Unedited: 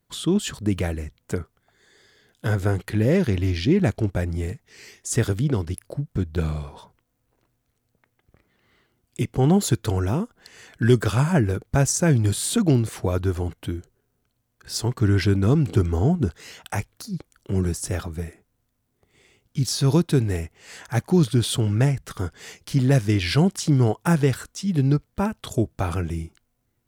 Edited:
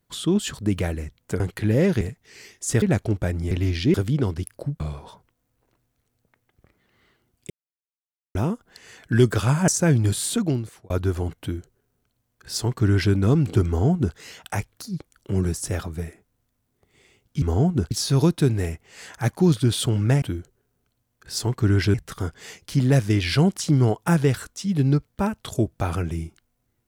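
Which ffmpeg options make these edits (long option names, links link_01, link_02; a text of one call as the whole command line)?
ffmpeg -i in.wav -filter_complex "[0:a]asplit=15[link_01][link_02][link_03][link_04][link_05][link_06][link_07][link_08][link_09][link_10][link_11][link_12][link_13][link_14][link_15];[link_01]atrim=end=1.402[link_16];[link_02]atrim=start=2.708:end=3.322[link_17];[link_03]atrim=start=4.438:end=5.252[link_18];[link_04]atrim=start=3.748:end=4.442[link_19];[link_05]atrim=start=3.318:end=3.752[link_20];[link_06]atrim=start=5.248:end=6.112[link_21];[link_07]atrim=start=6.498:end=9.2,asetpts=PTS-STARTPTS,afade=type=out:start_time=2.698:duration=0.004:curve=hsin[link_22];[link_08]atrim=start=9.2:end=10.05,asetpts=PTS-STARTPTS,volume=0[link_23];[link_09]atrim=start=10.05:end=11.382,asetpts=PTS-STARTPTS,afade=type=in:duration=0.004:curve=hsin[link_24];[link_10]atrim=start=11.878:end=13.1,asetpts=PTS-STARTPTS,afade=type=out:start_time=0.532:duration=0.69[link_25];[link_11]atrim=start=13.1:end=19.622,asetpts=PTS-STARTPTS,afade=type=in:duration=0.004:curve=hsin[link_26];[link_12]atrim=start=15.868:end=16.362[link_27];[link_13]atrim=start=19.618:end=21.932[link_28];[link_14]atrim=start=13.608:end=15.332[link_29];[link_15]atrim=start=21.928[link_30];[link_16][link_17]acrossfade=duration=0.004:curve1=hsin:curve2=hsin[link_31];[link_31][link_18]acrossfade=duration=0.004:curve1=hsin:curve2=hsin[link_32];[link_32][link_19]acrossfade=duration=0.004:curve1=hsin:curve2=hsin[link_33];[link_33][link_20]acrossfade=duration=0.004:curve1=hsin:curve2=hsin[link_34];[link_34][link_21]acrossfade=duration=0.004:curve1=hsin:curve2=hsin[link_35];[link_22][link_23][link_24]concat=n=3:v=0:a=1[link_36];[link_35][link_36]acrossfade=duration=0.004:curve1=hsin:curve2=hsin[link_37];[link_25][link_26]concat=n=2:v=0:a=1[link_38];[link_37][link_38]acrossfade=duration=0.004:curve1=hsin:curve2=hsin[link_39];[link_39][link_27]acrossfade=duration=0.004:curve1=hsin:curve2=hsin[link_40];[link_40][link_28]acrossfade=duration=0.004:curve1=hsin:curve2=hsin[link_41];[link_41][link_29]acrossfade=duration=0.004:curve1=hsin:curve2=hsin[link_42];[link_42][link_30]acrossfade=duration=0.004:curve1=hsin:curve2=hsin" out.wav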